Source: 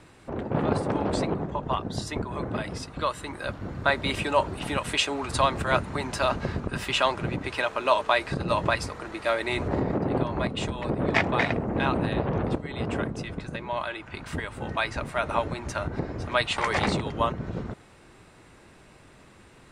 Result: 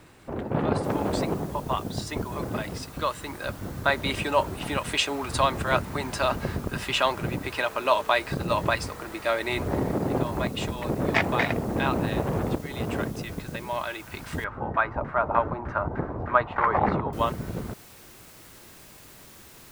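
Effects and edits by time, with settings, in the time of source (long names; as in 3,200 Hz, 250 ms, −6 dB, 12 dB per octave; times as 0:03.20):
0:00.84: noise floor change −69 dB −51 dB
0:14.44–0:17.13: auto-filter low-pass saw down 3.3 Hz 790–1,600 Hz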